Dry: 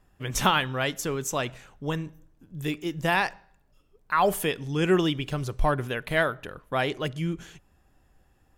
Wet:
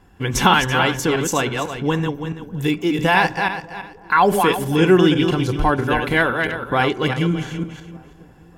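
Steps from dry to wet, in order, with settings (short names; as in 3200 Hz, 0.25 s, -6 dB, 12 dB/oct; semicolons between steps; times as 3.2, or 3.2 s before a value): regenerating reverse delay 0.166 s, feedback 40%, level -5.5 dB; high shelf 6200 Hz -7.5 dB; in parallel at +2 dB: compressor, threshold -34 dBFS, peak gain reduction 16.5 dB; on the sum: notch comb 620 Hz; dark delay 0.599 s, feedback 45%, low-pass 1000 Hz, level -23 dB; on a send at -22 dB: reverb RT60 0.70 s, pre-delay 3 ms; on the sum: gain +7 dB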